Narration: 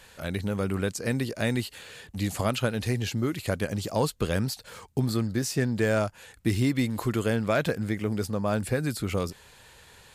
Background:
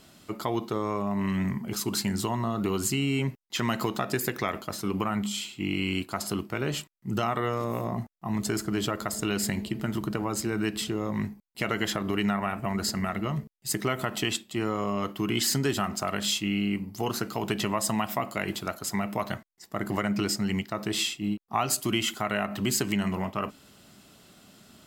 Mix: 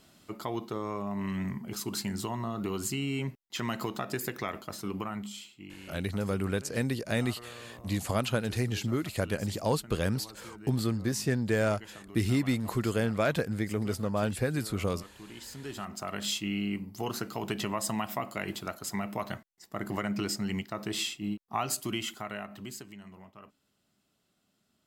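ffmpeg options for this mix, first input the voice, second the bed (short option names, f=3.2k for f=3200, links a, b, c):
-filter_complex "[0:a]adelay=5700,volume=-2.5dB[a];[1:a]volume=9.5dB,afade=t=out:st=4.84:d=0.9:silence=0.199526,afade=t=in:st=15.52:d=0.78:silence=0.177828,afade=t=out:st=21.61:d=1.3:silence=0.149624[b];[a][b]amix=inputs=2:normalize=0"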